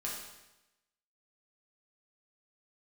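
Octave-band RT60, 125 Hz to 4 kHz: 0.95, 0.95, 0.95, 0.95, 0.95, 0.95 s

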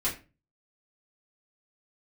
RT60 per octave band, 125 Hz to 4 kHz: 0.55, 0.40, 0.35, 0.30, 0.30, 0.25 s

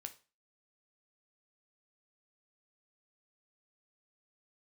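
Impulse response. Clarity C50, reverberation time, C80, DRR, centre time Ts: 15.5 dB, 0.35 s, 21.5 dB, 6.5 dB, 6 ms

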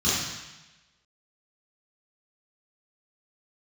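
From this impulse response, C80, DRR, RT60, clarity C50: 2.0 dB, -10.0 dB, 1.0 s, -1.5 dB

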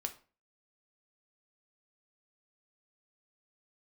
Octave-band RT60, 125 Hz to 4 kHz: 0.45, 0.45, 0.40, 0.35, 0.35, 0.30 s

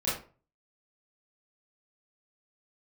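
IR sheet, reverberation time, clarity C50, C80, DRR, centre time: 0.40 s, 3.0 dB, 9.5 dB, -10.0 dB, 46 ms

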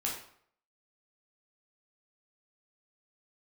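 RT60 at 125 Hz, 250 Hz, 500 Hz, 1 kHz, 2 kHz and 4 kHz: 0.60, 0.55, 0.60, 0.60, 0.55, 0.45 s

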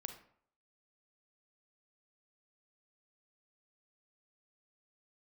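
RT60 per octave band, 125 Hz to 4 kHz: 0.60, 0.55, 0.60, 0.60, 0.50, 0.35 s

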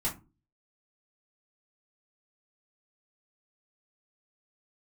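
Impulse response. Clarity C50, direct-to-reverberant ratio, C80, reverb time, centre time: 13.0 dB, -7.5 dB, 21.0 dB, not exponential, 19 ms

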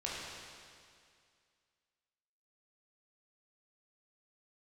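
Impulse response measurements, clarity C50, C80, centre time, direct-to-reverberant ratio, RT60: -2.0 dB, 0.0 dB, 0.137 s, -6.5 dB, 2.2 s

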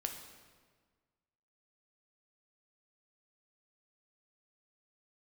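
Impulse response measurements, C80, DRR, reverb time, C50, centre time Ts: 8.5 dB, 3.5 dB, 1.6 s, 6.5 dB, 31 ms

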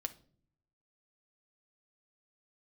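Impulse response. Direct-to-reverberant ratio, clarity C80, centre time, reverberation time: 6.5 dB, 22.5 dB, 4 ms, 0.50 s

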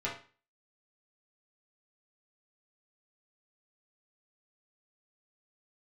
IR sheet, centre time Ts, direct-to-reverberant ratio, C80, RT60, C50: 27 ms, -7.0 dB, 12.5 dB, 0.35 s, 6.5 dB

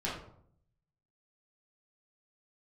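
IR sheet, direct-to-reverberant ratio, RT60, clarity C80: -7.0 dB, 0.65 s, 8.0 dB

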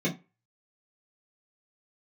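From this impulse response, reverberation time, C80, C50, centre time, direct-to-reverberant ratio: 0.25 s, 22.5 dB, 15.0 dB, 15 ms, -6.0 dB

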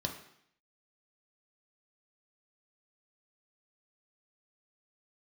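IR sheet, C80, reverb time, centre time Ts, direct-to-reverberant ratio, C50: 11.0 dB, 0.70 s, 21 ms, 2.0 dB, 8.0 dB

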